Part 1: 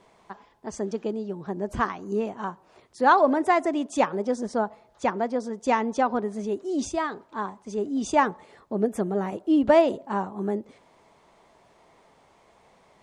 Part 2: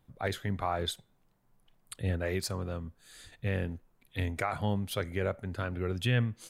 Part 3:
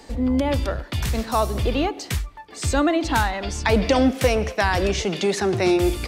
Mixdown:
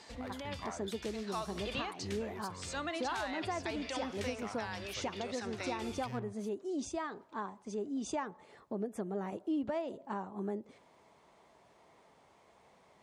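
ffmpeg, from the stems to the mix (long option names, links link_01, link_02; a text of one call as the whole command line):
ffmpeg -i stem1.wav -i stem2.wav -i stem3.wav -filter_complex "[0:a]acompressor=threshold=-32dB:ratio=2,volume=-5.5dB[link_01];[1:a]equalizer=frequency=1000:width_type=o:width=0.37:gain=10,aeval=exprs='clip(val(0),-1,0.0282)':channel_layout=same,volume=-12dB,asplit=2[link_02][link_03];[2:a]lowpass=7100,tiltshelf=frequency=670:gain=-8,volume=-12dB[link_04];[link_03]apad=whole_len=267869[link_05];[link_04][link_05]sidechaincompress=threshold=-51dB:ratio=8:attack=25:release=1100[link_06];[link_01][link_02][link_06]amix=inputs=3:normalize=0,highpass=50,alimiter=level_in=3dB:limit=-24dB:level=0:latency=1:release=224,volume=-3dB" out.wav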